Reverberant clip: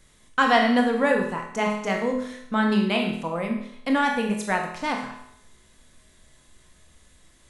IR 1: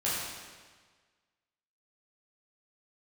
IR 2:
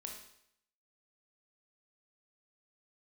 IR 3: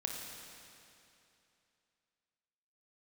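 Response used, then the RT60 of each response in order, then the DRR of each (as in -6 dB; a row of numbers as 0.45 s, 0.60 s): 2; 1.5 s, 0.70 s, 2.8 s; -9.5 dB, 1.0 dB, 0.5 dB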